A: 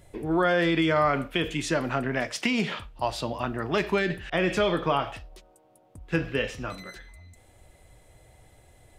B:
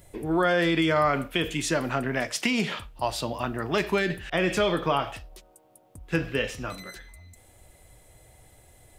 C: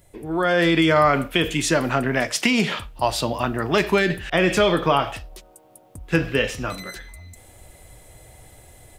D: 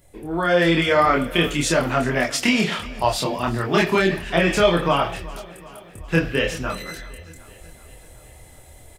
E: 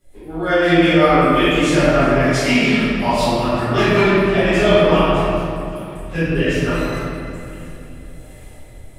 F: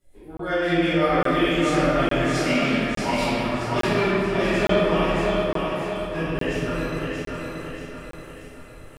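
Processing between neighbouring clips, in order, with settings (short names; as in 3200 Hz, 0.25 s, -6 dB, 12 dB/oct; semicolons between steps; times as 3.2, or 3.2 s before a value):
high shelf 8100 Hz +11 dB
AGC gain up to 10 dB; gain -2.5 dB
chorus voices 4, 0.95 Hz, delay 26 ms, depth 3 ms; feedback echo 0.377 s, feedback 59%, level -19.5 dB; gain +3.5 dB
rotary speaker horn 5.5 Hz, later 1.2 Hz, at 4.55; reverb RT60 2.5 s, pre-delay 4 ms, DRR -16.5 dB; gain -10.5 dB
on a send: thinning echo 0.63 s, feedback 47%, high-pass 150 Hz, level -4 dB; on the sum: crackling interface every 0.86 s, samples 1024, zero, from 0.37; gain -8 dB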